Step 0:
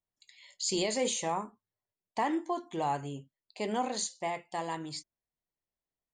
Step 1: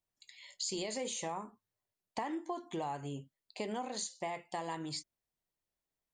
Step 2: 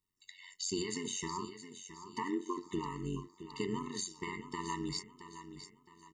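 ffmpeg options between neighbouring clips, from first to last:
-af "acompressor=threshold=-37dB:ratio=6,volume=1.5dB"
-af "aecho=1:1:668|1336|2004|2672:0.266|0.0984|0.0364|0.0135,tremolo=f=92:d=0.788,afftfilt=real='re*eq(mod(floor(b*sr/1024/440),2),0)':imag='im*eq(mod(floor(b*sr/1024/440),2),0)':win_size=1024:overlap=0.75,volume=7dB"

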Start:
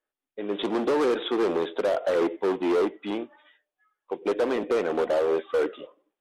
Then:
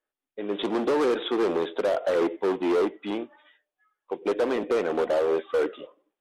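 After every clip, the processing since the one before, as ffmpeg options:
-af anull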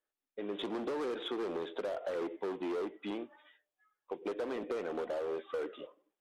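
-filter_complex "[0:a]asplit=2[a][b];[b]asoftclip=type=tanh:threshold=-31.5dB,volume=-8dB[c];[a][c]amix=inputs=2:normalize=0,acompressor=threshold=-28dB:ratio=3,volume=-7.5dB"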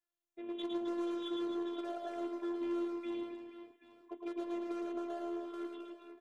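-af "afftfilt=real='hypot(re,im)*cos(PI*b)':imag='0':win_size=512:overlap=0.75,aecho=1:1:110|264|479.6|781.4|1204:0.631|0.398|0.251|0.158|0.1,volume=-2.5dB"

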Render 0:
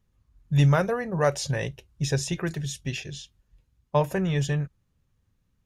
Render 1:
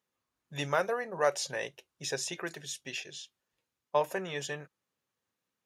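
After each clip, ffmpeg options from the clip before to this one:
-af "highpass=430,volume=-3dB"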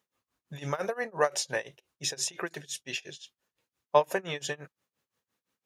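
-af "tremolo=f=5.8:d=0.94,volume=6.5dB"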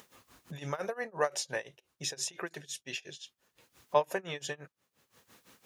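-af "acompressor=mode=upward:threshold=-34dB:ratio=2.5,volume=-4dB"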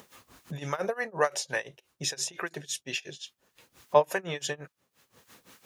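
-filter_complex "[0:a]acrossover=split=890[a][b];[a]aeval=exprs='val(0)*(1-0.5/2+0.5/2*cos(2*PI*3.5*n/s))':c=same[c];[b]aeval=exprs='val(0)*(1-0.5/2-0.5/2*cos(2*PI*3.5*n/s))':c=same[d];[c][d]amix=inputs=2:normalize=0,volume=7dB"

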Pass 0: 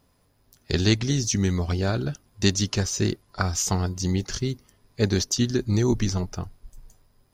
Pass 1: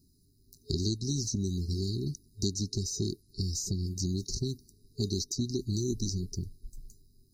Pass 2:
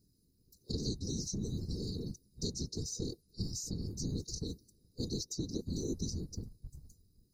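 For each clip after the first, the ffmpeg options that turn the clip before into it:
-filter_complex "[0:a]afftfilt=real='re*(1-between(b*sr/4096,420,3800))':imag='im*(1-between(b*sr/4096,420,3800))':win_size=4096:overlap=0.75,acrossover=split=930|4300[a][b][c];[a]acompressor=threshold=-30dB:ratio=4[d];[b]acompressor=threshold=-43dB:ratio=4[e];[c]acompressor=threshold=-38dB:ratio=4[f];[d][e][f]amix=inputs=3:normalize=0"
-af "afftfilt=real='hypot(re,im)*cos(2*PI*random(0))':imag='hypot(re,im)*sin(2*PI*random(1))':win_size=512:overlap=0.75"

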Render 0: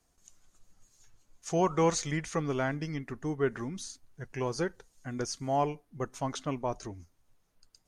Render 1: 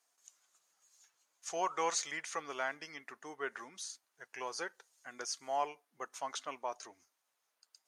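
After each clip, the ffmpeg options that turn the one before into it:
-af "highpass=800,volume=-1.5dB"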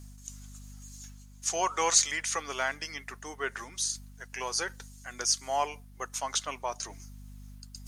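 -af "aeval=exprs='val(0)+0.00178*(sin(2*PI*50*n/s)+sin(2*PI*2*50*n/s)/2+sin(2*PI*3*50*n/s)/3+sin(2*PI*4*50*n/s)/4+sin(2*PI*5*50*n/s)/5)':c=same,highshelf=f=3.2k:g=11.5,areverse,acompressor=mode=upward:threshold=-44dB:ratio=2.5,areverse,volume=4.5dB"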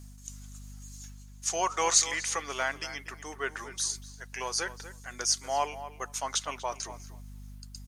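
-filter_complex "[0:a]asplit=2[a][b];[b]adelay=241,lowpass=f=2.5k:p=1,volume=-12.5dB,asplit=2[c][d];[d]adelay=241,lowpass=f=2.5k:p=1,volume=0.16[e];[a][c][e]amix=inputs=3:normalize=0"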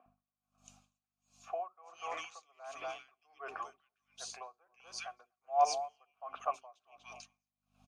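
-filter_complex "[0:a]asplit=3[a][b][c];[a]bandpass=f=730:t=q:w=8,volume=0dB[d];[b]bandpass=f=1.09k:t=q:w=8,volume=-6dB[e];[c]bandpass=f=2.44k:t=q:w=8,volume=-9dB[f];[d][e][f]amix=inputs=3:normalize=0,acrossover=split=320|2000[g][h][i];[g]adelay=60[j];[i]adelay=400[k];[j][h][k]amix=inputs=3:normalize=0,aeval=exprs='val(0)*pow(10,-34*(0.5-0.5*cos(2*PI*1.4*n/s))/20)':c=same,volume=13dB"

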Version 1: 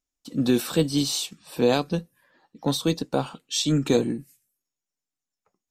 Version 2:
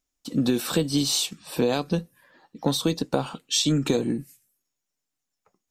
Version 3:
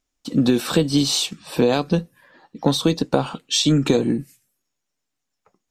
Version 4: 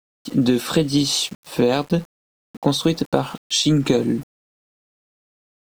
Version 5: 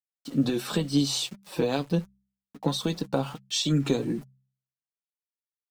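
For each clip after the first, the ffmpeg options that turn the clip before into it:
-af "acompressor=threshold=-24dB:ratio=6,volume=5dB"
-af "highshelf=f=8.4k:g=-10,volume=5.5dB"
-af "aeval=exprs='val(0)*gte(abs(val(0)),0.0133)':c=same"
-af "flanger=delay=4.8:depth=2.6:regen=36:speed=1.4:shape=sinusoidal,bandreject=f=65.61:t=h:w=4,bandreject=f=131.22:t=h:w=4,bandreject=f=196.83:t=h:w=4,volume=-4dB"

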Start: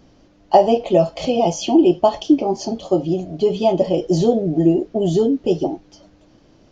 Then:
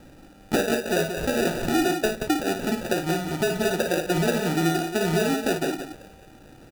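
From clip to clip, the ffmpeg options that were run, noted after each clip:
-filter_complex "[0:a]acompressor=threshold=-27dB:ratio=3,acrusher=samples=41:mix=1:aa=0.000001,asplit=2[a][b];[b]aecho=0:1:55.39|177.8:0.447|0.398[c];[a][c]amix=inputs=2:normalize=0,volume=2dB"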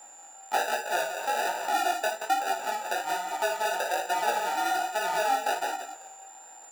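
-af "highpass=f=850:t=q:w=5.1,aeval=exprs='val(0)+0.00708*sin(2*PI*7200*n/s)':c=same,flanger=delay=15.5:depth=6.5:speed=1.2,volume=-1.5dB"

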